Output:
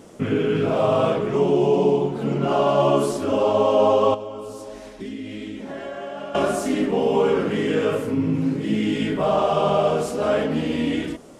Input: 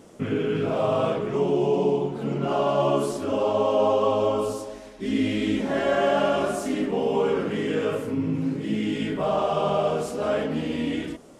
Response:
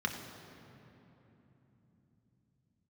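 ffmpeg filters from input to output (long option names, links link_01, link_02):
-filter_complex "[0:a]asettb=1/sr,asplit=3[link_01][link_02][link_03];[link_01]atrim=end=4.144[link_04];[link_02]atrim=start=4.14:end=6.35,asetpts=PTS-STARTPTS,afade=type=in:duration=0.004:curve=qsin,afade=type=out:start_time=2.206:duration=0.004:curve=qsin,acompressor=threshold=-35dB:ratio=6[link_05];[link_03]atrim=start=6.346[link_06];[link_04][link_05]acrossfade=duration=0.004:curve1=hsin:curve2=qsin[link_07];[link_07][link_06]acrossfade=duration=0.004:curve1=qsin:curve2=hsin,volume=4dB"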